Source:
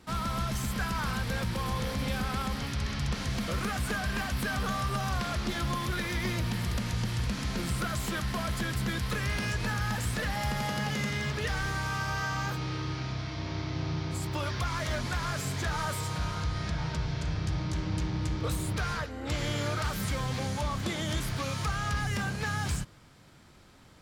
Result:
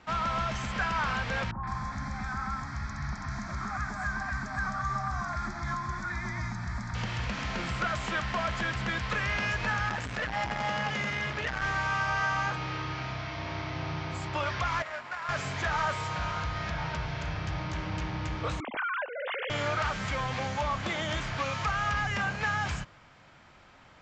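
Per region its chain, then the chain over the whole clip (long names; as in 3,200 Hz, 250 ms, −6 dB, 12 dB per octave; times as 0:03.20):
0:01.51–0:06.95: phaser with its sweep stopped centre 1,200 Hz, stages 4 + three-band delay without the direct sound lows, mids, highs 120/160 ms, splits 1,100/3,300 Hz
0:09.89–0:11.62: low-pass filter 12,000 Hz + saturating transformer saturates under 240 Hz
0:14.82–0:15.29: running median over 15 samples + high-pass filter 1,400 Hz 6 dB per octave + notch filter 6,300 Hz, Q 11
0:18.60–0:19.50: three sine waves on the formant tracks + downward compressor 5 to 1, threshold −34 dBFS
whole clip: Butterworth low-pass 7,400 Hz 72 dB per octave; flat-topped bell 1,300 Hz +8.5 dB 2.7 octaves; level −3.5 dB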